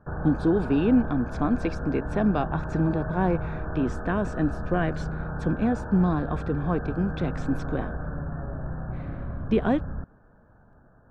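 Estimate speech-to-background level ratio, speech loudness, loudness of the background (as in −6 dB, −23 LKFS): 7.0 dB, −27.0 LKFS, −34.0 LKFS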